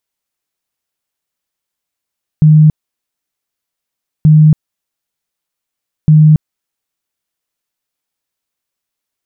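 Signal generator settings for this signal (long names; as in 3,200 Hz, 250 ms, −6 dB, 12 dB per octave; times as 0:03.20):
tone bursts 154 Hz, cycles 43, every 1.83 s, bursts 3, −2 dBFS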